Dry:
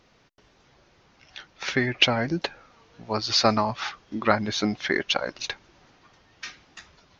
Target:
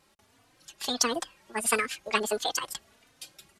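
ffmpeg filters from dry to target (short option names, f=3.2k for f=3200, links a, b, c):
-filter_complex "[0:a]asetrate=88200,aresample=44100,asplit=2[a][b];[b]adelay=3.3,afreqshift=1.5[c];[a][c]amix=inputs=2:normalize=1,volume=-1.5dB"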